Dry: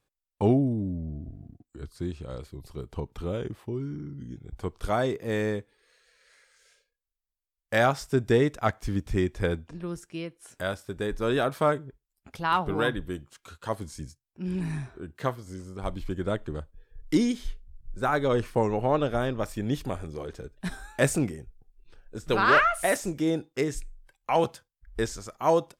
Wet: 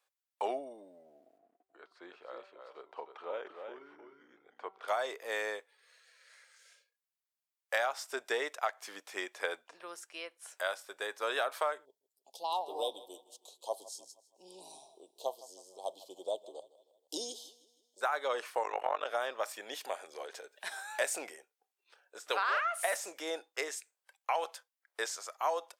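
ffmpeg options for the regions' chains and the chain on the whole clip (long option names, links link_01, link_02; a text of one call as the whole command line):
ffmpeg -i in.wav -filter_complex "[0:a]asettb=1/sr,asplit=3[link_01][link_02][link_03];[link_01]atrim=end=1.384[link_04];[link_02]atrim=start=1.38:end=4.88,asetpts=PTS-STARTPTS,afade=type=in:duration=0.004:curve=qsin,afade=type=out:start_time=3.496:duration=0.004:curve=qsin,lowpass=2200,bandreject=frequency=192.3:width_type=h:width=4,bandreject=frequency=384.6:width_type=h:width=4,bandreject=frequency=576.9:width_type=h:width=4,bandreject=frequency=769.2:width_type=h:width=4,bandreject=frequency=961.5:width_type=h:width=4,bandreject=frequency=1153.8:width_type=h:width=4,bandreject=frequency=1346.1:width_type=h:width=4,aecho=1:1:309:0.473,atrim=end_sample=154350[link_05];[link_03]atrim=start=4.876[link_06];[link_04][link_05]acrossfade=duration=0.004:curve1=hsin:curve2=qsin[link_07];[link_07][link_06]acrossfade=duration=0.004:curve1=qsin:curve2=hsin,asettb=1/sr,asplit=3[link_08][link_09][link_10];[link_08]atrim=end=11.854[link_11];[link_09]atrim=start=11.85:end=18.01,asetpts=PTS-STARTPTS,afade=type=in:duration=0.004:curve=qsin,afade=type=out:start_time=6.156:duration=0.004:curve=qsin,asuperstop=centerf=1700:order=8:qfactor=0.67,bandreject=frequency=50:width_type=h:width=6,bandreject=frequency=100:width_type=h:width=6,bandreject=frequency=150:width_type=h:width=6,bandreject=frequency=200:width_type=h:width=6,aecho=1:1:158|316|474|632:0.106|0.0508|0.0244|0.0117,atrim=end_sample=271656[link_12];[link_10]atrim=start=18.006[link_13];[link_11][link_12]acrossfade=duration=0.004:curve1=hsin:curve2=qsin[link_14];[link_14][link_13]acrossfade=duration=0.004:curve1=qsin:curve2=hsin,asettb=1/sr,asplit=3[link_15][link_16][link_17];[link_15]atrim=end=18.634[link_18];[link_16]atrim=start=18.63:end=19.06,asetpts=PTS-STARTPTS,afade=type=in:duration=0.004:curve=qsin,afade=type=out:start_time=0.426:duration=0.004:curve=qsin,equalizer=frequency=1700:width_type=o:width=2.3:gain=7,bandreject=frequency=4500:width=5.2,tremolo=f=47:d=0.974[link_19];[link_17]atrim=start=19.056[link_20];[link_18][link_19]acrossfade=duration=0.004:curve1=hsin:curve2=qsin[link_21];[link_21][link_20]acrossfade=duration=0.004:curve1=qsin:curve2=hsin,asettb=1/sr,asplit=3[link_22][link_23][link_24];[link_22]atrim=end=19.694[link_25];[link_23]atrim=start=19.69:end=21.36,asetpts=PTS-STARTPTS,afade=type=in:duration=0.004:curve=qsin,afade=type=out:start_time=1.666:duration=0.004:curve=qsin,equalizer=frequency=1200:width_type=o:width=0.34:gain=-6,acompressor=mode=upward:threshold=-31dB:ratio=2.5:attack=3.2:release=140:knee=2.83:detection=peak[link_26];[link_24]atrim=start=21.356[link_27];[link_25][link_26]acrossfade=duration=0.004:curve1=hsin:curve2=qsin[link_28];[link_28][link_27]acrossfade=duration=0.004:curve1=qsin:curve2=hsin,highpass=frequency=590:width=0.5412,highpass=frequency=590:width=1.3066,acompressor=threshold=-28dB:ratio=8" out.wav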